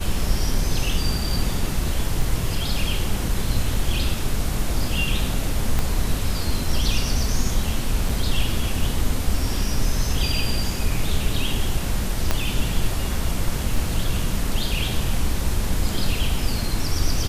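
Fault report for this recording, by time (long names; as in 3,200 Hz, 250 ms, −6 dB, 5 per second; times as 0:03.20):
0:02.22: drop-out 3.3 ms
0:05.79: click −9 dBFS
0:08.09: drop-out 3.6 ms
0:12.31: click −5 dBFS
0:13.76: drop-out 2.8 ms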